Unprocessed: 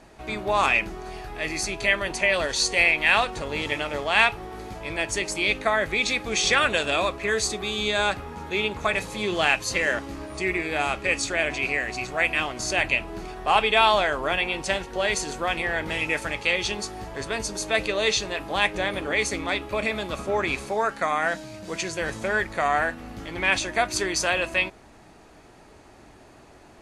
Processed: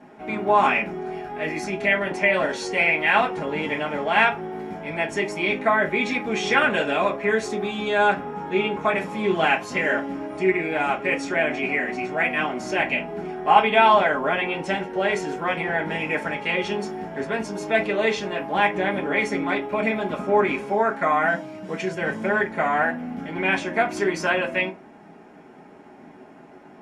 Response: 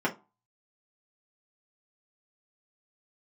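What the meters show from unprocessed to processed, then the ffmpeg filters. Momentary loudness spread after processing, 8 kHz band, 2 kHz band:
9 LU, -11.5 dB, +0.5 dB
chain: -filter_complex "[1:a]atrim=start_sample=2205[a];[0:a][a]afir=irnorm=-1:irlink=0,volume=-8.5dB"

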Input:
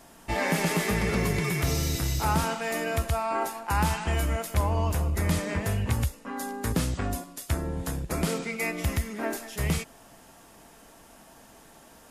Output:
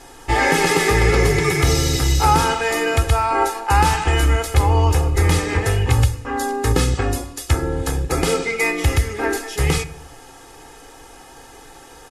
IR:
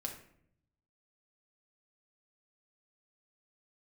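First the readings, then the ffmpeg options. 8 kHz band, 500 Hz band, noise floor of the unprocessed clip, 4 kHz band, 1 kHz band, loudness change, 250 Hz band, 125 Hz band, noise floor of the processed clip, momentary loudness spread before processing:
+9.5 dB, +11.0 dB, -53 dBFS, +11.0 dB, +11.5 dB, +10.0 dB, +6.0 dB, +9.5 dB, -43 dBFS, 7 LU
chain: -filter_complex "[0:a]lowpass=10k,aecho=1:1:2.4:0.82,asplit=2[a][b];[1:a]atrim=start_sample=2205,afade=t=out:st=0.41:d=0.01,atrim=end_sample=18522[c];[b][c]afir=irnorm=-1:irlink=0,volume=-5dB[d];[a][d]amix=inputs=2:normalize=0,volume=5.5dB"

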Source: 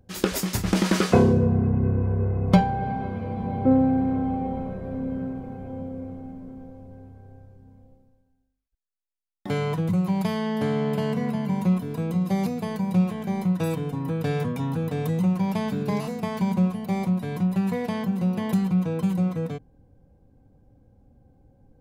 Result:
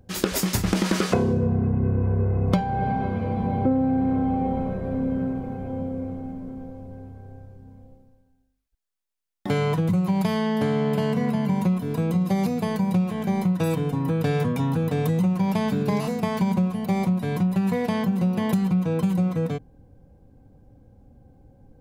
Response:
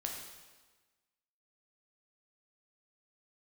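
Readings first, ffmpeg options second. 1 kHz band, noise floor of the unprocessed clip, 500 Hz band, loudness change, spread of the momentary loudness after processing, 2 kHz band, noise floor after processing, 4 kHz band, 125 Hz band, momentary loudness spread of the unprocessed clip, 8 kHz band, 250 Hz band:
+1.5 dB, -68 dBFS, +1.0 dB, +1.0 dB, 8 LU, +1.5 dB, -64 dBFS, +1.5 dB, +1.0 dB, 13 LU, n/a, +1.0 dB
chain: -af "acompressor=threshold=-23dB:ratio=5,volume=4.5dB"

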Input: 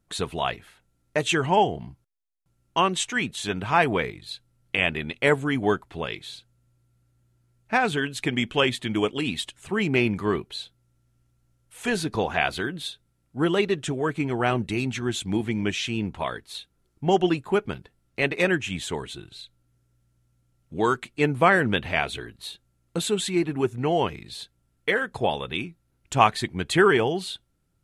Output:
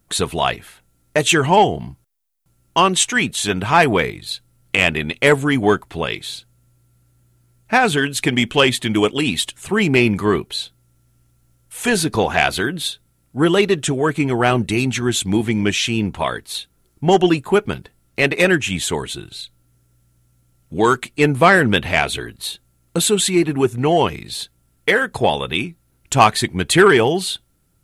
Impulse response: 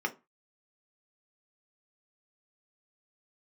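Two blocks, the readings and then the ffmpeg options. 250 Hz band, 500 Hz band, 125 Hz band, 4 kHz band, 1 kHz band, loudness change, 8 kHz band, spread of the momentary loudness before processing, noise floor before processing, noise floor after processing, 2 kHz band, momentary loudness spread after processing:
+7.5 dB, +7.5 dB, +7.5 dB, +9.0 dB, +7.0 dB, +7.5 dB, +13.0 dB, 17 LU, -70 dBFS, -62 dBFS, +7.5 dB, 15 LU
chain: -af "acontrast=83,highshelf=f=8.8k:g=11.5,volume=1dB"

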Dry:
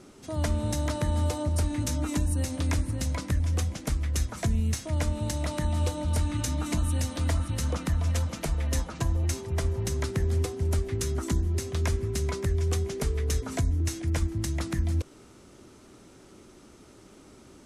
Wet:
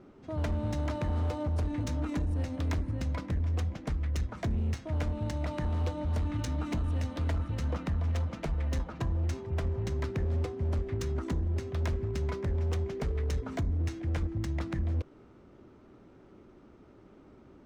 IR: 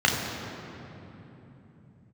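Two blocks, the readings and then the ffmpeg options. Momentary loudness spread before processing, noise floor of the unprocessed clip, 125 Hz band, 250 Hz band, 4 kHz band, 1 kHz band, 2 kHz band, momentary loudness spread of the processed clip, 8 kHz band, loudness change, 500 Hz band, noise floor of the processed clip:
3 LU, -53 dBFS, -3.5 dB, -3.5 dB, -9.5 dB, -3.5 dB, -5.0 dB, 2 LU, -16.0 dB, -4.0 dB, -3.5 dB, -56 dBFS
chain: -af "adynamicsmooth=sensitivity=4:basefreq=2k,asoftclip=type=hard:threshold=-23.5dB,volume=-2.5dB"

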